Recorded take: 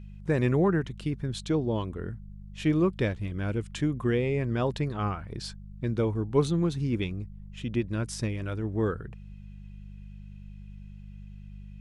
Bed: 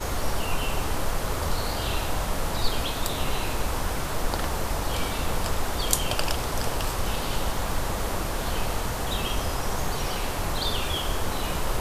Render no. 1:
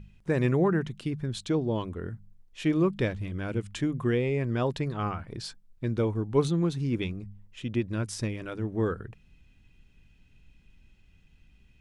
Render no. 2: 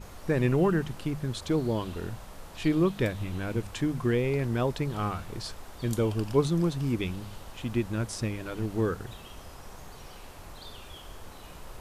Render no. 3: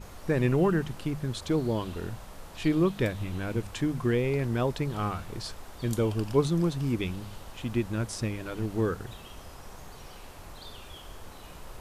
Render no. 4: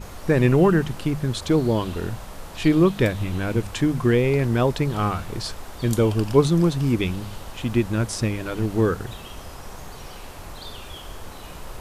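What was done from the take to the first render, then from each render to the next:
hum removal 50 Hz, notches 4
mix in bed −18 dB
no processing that can be heard
level +7.5 dB

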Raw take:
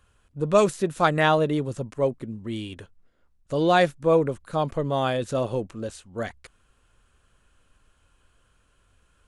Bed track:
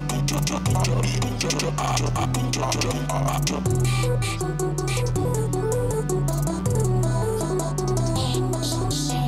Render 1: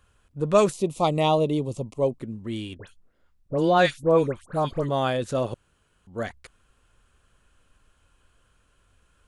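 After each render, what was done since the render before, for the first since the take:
0:00.72–0:02.20: Butterworth band-reject 1,600 Hz, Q 1.2
0:02.77–0:04.89: all-pass dispersion highs, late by 89 ms, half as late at 1,800 Hz
0:05.54–0:06.07: fill with room tone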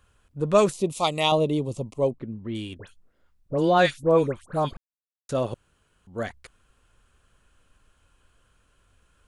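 0:00.92–0:01.32: tilt shelving filter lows −7.5 dB
0:02.11–0:02.55: high-frequency loss of the air 260 metres
0:04.77–0:05.29: silence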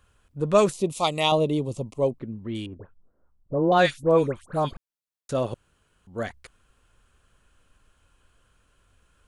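0:02.66–0:03.72: low-pass filter 1,200 Hz 24 dB per octave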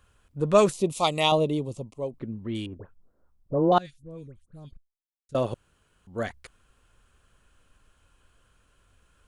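0:01.25–0:02.13: fade out, to −10.5 dB
0:03.78–0:05.35: guitar amp tone stack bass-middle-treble 10-0-1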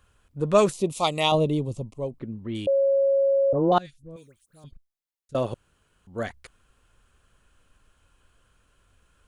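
0:01.34–0:02.13: low-shelf EQ 140 Hz +9.5 dB
0:02.67–0:03.53: beep over 549 Hz −17.5 dBFS
0:04.16–0:04.64: spectral tilt +4 dB per octave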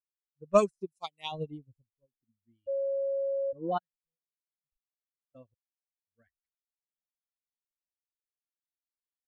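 spectral dynamics exaggerated over time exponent 2
expander for the loud parts 2.5 to 1, over −42 dBFS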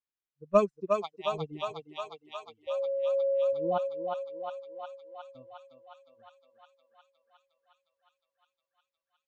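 high-frequency loss of the air 120 metres
on a send: feedback echo with a high-pass in the loop 359 ms, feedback 81%, high-pass 510 Hz, level −3 dB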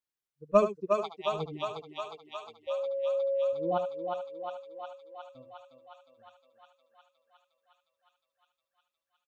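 single-tap delay 74 ms −10.5 dB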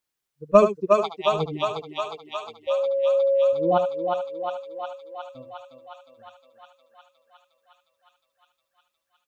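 level +9 dB
brickwall limiter −2 dBFS, peak gain reduction 2.5 dB

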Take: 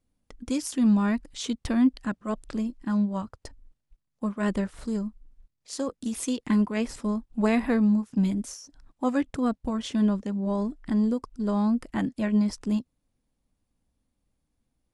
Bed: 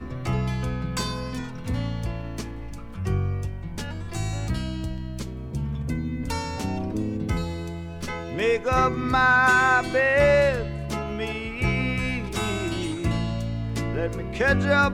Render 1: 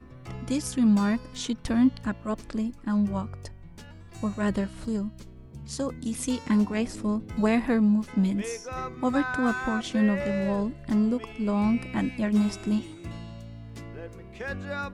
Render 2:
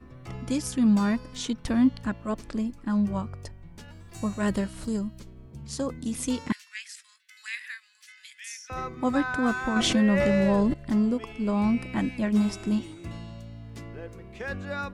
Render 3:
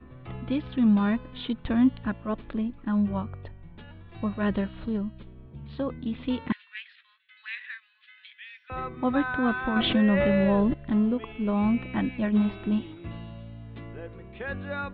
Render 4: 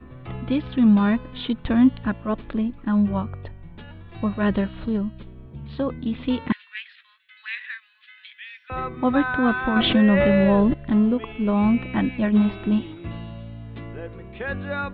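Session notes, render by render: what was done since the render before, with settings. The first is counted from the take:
mix in bed −13.5 dB
0:03.88–0:05.19: high-shelf EQ 6,600 Hz +9.5 dB; 0:06.52–0:08.70: elliptic high-pass filter 1,700 Hz, stop band 70 dB; 0:09.76–0:10.74: envelope flattener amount 70%
Butterworth low-pass 3,800 Hz 72 dB per octave; notch filter 2,100 Hz, Q 23
level +5 dB

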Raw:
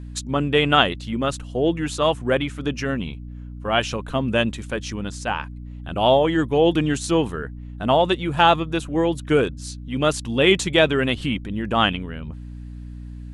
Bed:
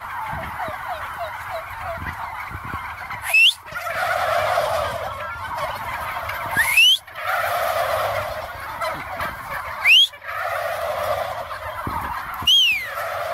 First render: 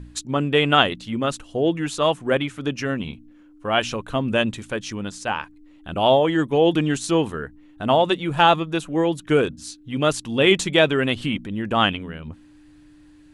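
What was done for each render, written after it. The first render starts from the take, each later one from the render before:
hum removal 60 Hz, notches 4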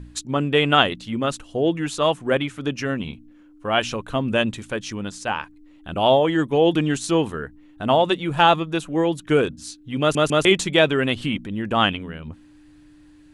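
0:10.00: stutter in place 0.15 s, 3 plays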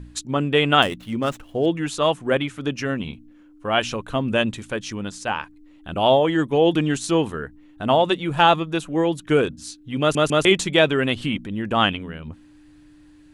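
0:00.82–0:01.66: running median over 9 samples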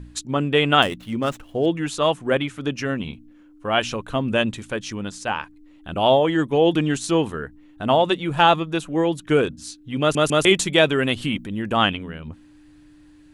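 0:10.21–0:11.77: high-shelf EQ 9,200 Hz +10 dB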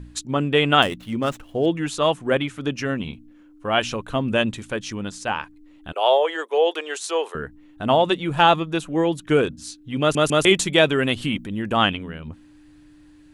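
0:05.92–0:07.35: elliptic high-pass filter 420 Hz, stop band 70 dB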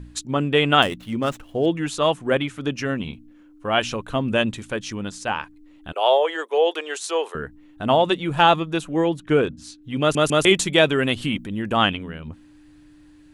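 0:09.08–0:09.82: high-shelf EQ 3,900 Hz → 6,500 Hz −9.5 dB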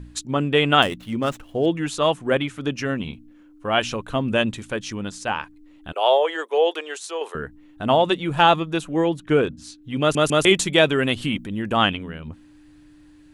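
0:06.65–0:07.21: fade out, to −7 dB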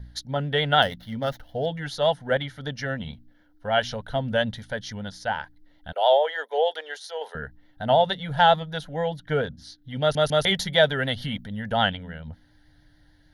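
phaser with its sweep stopped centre 1,700 Hz, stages 8
pitch vibrato 6.8 Hz 39 cents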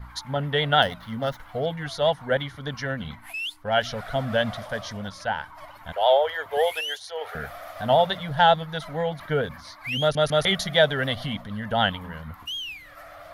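mix in bed −18 dB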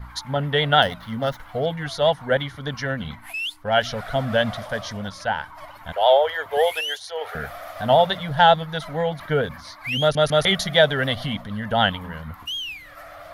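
level +3 dB
brickwall limiter −2 dBFS, peak gain reduction 1.5 dB

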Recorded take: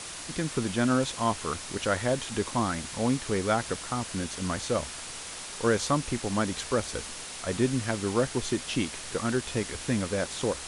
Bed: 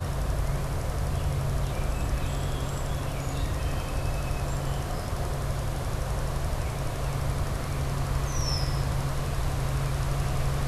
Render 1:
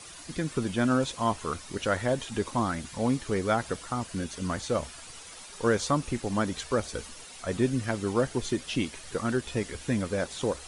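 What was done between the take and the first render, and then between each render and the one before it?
broadband denoise 10 dB, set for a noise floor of −40 dBFS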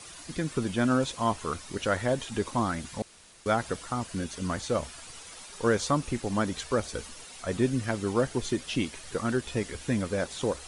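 0:03.02–0:03.46: fill with room tone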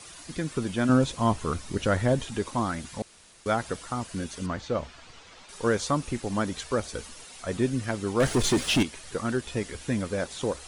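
0:00.89–0:02.31: low-shelf EQ 300 Hz +9 dB
0:04.46–0:05.49: high-frequency loss of the air 130 metres
0:08.20–0:08.83: leveller curve on the samples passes 3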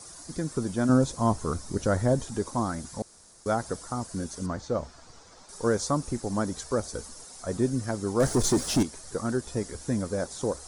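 drawn EQ curve 780 Hz 0 dB, 1,500 Hz −4 dB, 2,800 Hz −15 dB, 5,300 Hz +2 dB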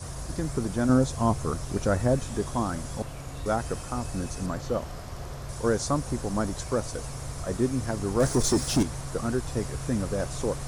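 mix in bed −8 dB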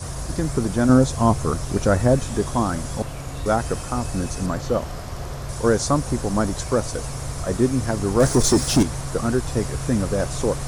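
level +6.5 dB

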